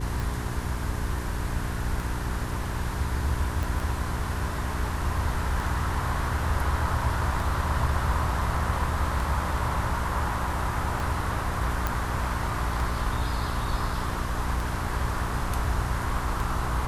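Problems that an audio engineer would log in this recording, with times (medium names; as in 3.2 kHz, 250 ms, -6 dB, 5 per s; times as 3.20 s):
hum 60 Hz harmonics 7 -32 dBFS
tick 33 1/3 rpm
3.63 s: pop
11.87 s: pop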